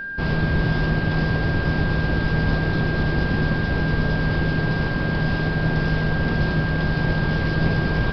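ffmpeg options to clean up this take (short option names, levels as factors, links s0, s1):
-af "bandreject=f=1600:w=30"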